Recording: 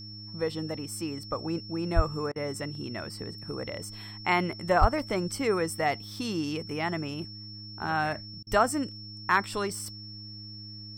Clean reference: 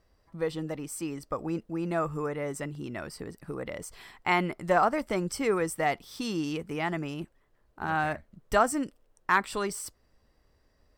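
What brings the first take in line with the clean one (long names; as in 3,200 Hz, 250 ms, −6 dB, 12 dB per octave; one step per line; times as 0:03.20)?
hum removal 104.6 Hz, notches 3
notch filter 5,400 Hz, Q 30
high-pass at the plosives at 0:01.95/0:04.80
repair the gap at 0:02.32/0:08.43, 37 ms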